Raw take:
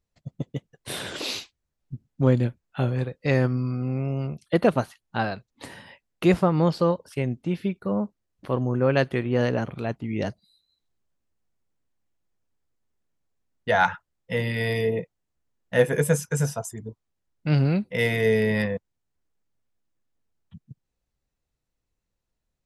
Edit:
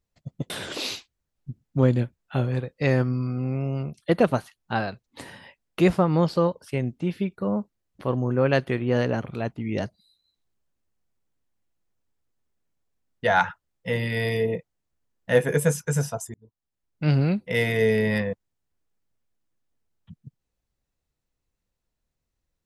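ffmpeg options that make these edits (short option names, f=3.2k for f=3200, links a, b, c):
-filter_complex "[0:a]asplit=3[a][b][c];[a]atrim=end=0.502[d];[b]atrim=start=0.938:end=16.78,asetpts=PTS-STARTPTS,afade=t=out:st=15.838:d=0.004:c=hsin[e];[c]atrim=start=16.78,asetpts=PTS-STARTPTS,afade=t=in:d=0.75[f];[e][f]concat=n=2:v=0:a=1[g];[d][g]acrossfade=d=0.004:c1=hsin:c2=hsin"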